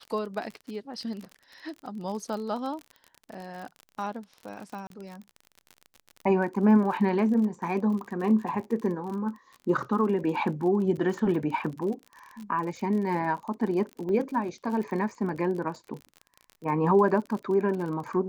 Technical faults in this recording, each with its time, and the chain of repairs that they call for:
surface crackle 39 per second −35 dBFS
0:04.87–0:04.90: drop-out 32 ms
0:14.09: drop-out 2.8 ms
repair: click removal
repair the gap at 0:04.87, 32 ms
repair the gap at 0:14.09, 2.8 ms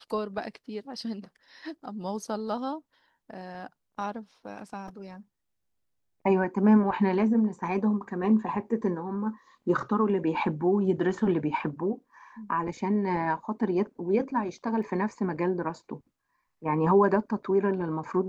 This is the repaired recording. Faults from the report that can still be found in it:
none of them is left

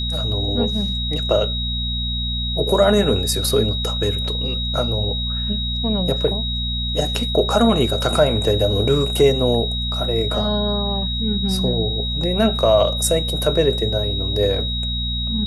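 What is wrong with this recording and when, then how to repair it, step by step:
mains hum 60 Hz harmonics 4 −25 dBFS
whistle 3,800 Hz −24 dBFS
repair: hum removal 60 Hz, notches 4
notch filter 3,800 Hz, Q 30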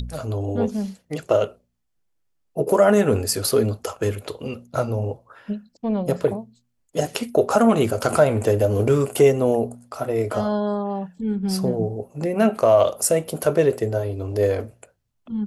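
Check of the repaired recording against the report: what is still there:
none of them is left

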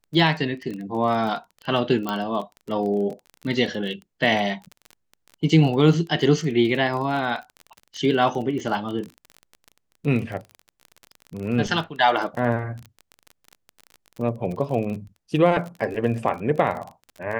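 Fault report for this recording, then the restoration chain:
surface crackle 28 per second −30 dBFS
0:02.09: click −12 dBFS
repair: click removal

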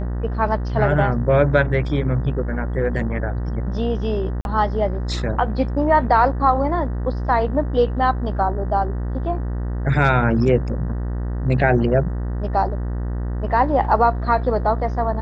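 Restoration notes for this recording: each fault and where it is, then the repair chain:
mains buzz 60 Hz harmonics 32 −24 dBFS
0:04.41–0:04.45: drop-out 41 ms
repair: hum removal 60 Hz, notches 32
repair the gap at 0:04.41, 41 ms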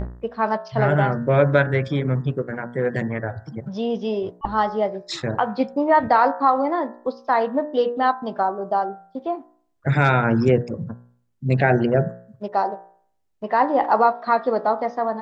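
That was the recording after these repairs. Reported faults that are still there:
none of them is left

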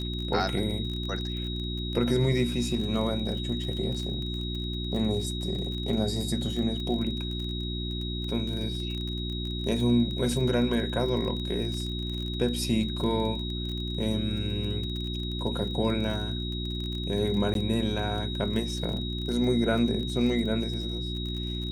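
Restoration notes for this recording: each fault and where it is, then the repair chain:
surface crackle 30 per second −33 dBFS
mains hum 60 Hz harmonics 6 −33 dBFS
whistle 3,800 Hz −36 dBFS
0:17.54–0:17.55: drop-out 12 ms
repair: click removal
notch filter 3,800 Hz, Q 30
hum removal 60 Hz, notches 6
repair the gap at 0:17.54, 12 ms

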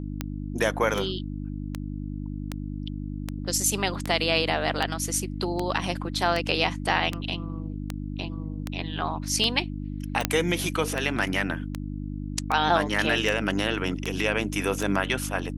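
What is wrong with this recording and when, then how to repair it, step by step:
mains hum 50 Hz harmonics 6 −33 dBFS
scratch tick 78 rpm −13 dBFS
0:10.25: click −4 dBFS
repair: click removal
hum removal 50 Hz, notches 6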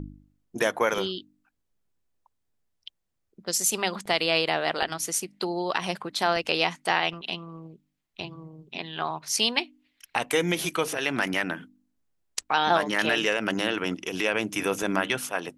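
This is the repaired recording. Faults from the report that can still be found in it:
0:10.25: click

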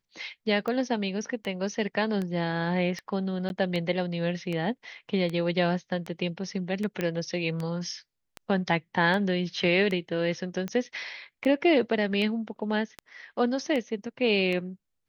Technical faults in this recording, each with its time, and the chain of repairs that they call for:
scratch tick 78 rpm −20 dBFS
0:03.49–0:03.50: drop-out 11 ms
0:07.01: click −15 dBFS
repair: click removal
repair the gap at 0:03.49, 11 ms

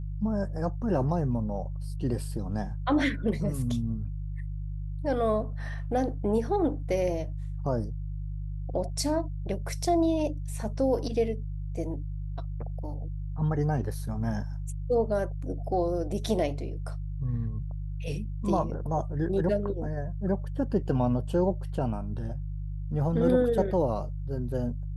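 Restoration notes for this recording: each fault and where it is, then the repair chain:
mains hum 50 Hz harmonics 3 −34 dBFS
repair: hum removal 50 Hz, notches 3

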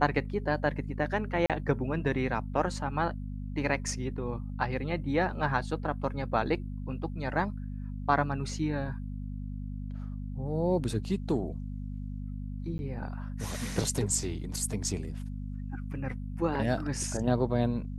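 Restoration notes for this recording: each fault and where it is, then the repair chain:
mains hum 50 Hz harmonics 5 −37 dBFS
0:01.46–0:01.50: drop-out 37 ms
0:12.78–0:12.79: drop-out 11 ms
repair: hum removal 50 Hz, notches 5
repair the gap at 0:01.46, 37 ms
repair the gap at 0:12.78, 11 ms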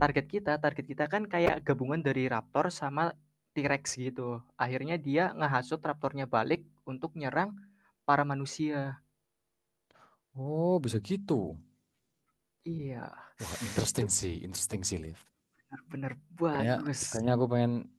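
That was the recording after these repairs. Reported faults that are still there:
none of them is left

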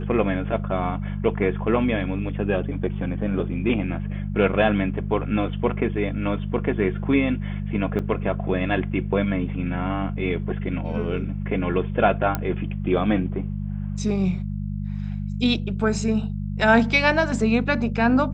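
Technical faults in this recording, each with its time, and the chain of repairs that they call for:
mains hum 50 Hz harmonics 4 −28 dBFS
0:07.99: drop-out 4.7 ms
0:12.35: click −10 dBFS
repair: click removal
hum removal 50 Hz, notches 4
repair the gap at 0:07.99, 4.7 ms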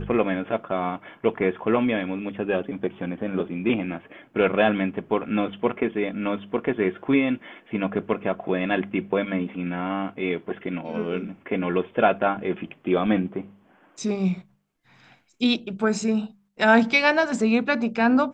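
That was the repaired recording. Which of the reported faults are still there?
none of them is left

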